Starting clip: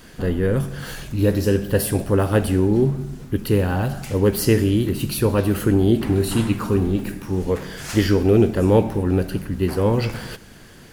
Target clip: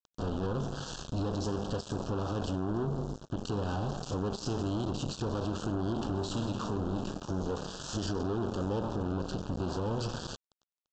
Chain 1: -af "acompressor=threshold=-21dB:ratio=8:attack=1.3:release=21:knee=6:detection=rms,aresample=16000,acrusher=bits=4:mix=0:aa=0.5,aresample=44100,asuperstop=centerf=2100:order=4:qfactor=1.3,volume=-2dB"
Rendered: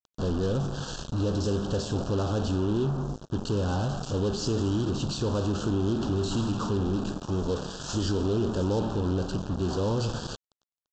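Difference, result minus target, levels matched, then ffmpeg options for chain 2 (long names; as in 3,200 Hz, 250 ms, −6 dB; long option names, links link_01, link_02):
downward compressor: peak gain reduction −7 dB
-af "acompressor=threshold=-29dB:ratio=8:attack=1.3:release=21:knee=6:detection=rms,aresample=16000,acrusher=bits=4:mix=0:aa=0.5,aresample=44100,asuperstop=centerf=2100:order=4:qfactor=1.3,volume=-2dB"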